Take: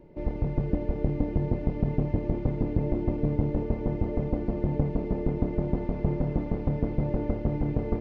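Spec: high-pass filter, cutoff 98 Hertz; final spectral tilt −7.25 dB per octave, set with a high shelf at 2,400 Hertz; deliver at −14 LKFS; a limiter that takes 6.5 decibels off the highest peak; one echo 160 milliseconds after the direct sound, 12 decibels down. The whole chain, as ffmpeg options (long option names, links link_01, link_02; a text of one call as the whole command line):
ffmpeg -i in.wav -af "highpass=98,highshelf=frequency=2400:gain=-3.5,alimiter=limit=-19.5dB:level=0:latency=1,aecho=1:1:160:0.251,volume=17.5dB" out.wav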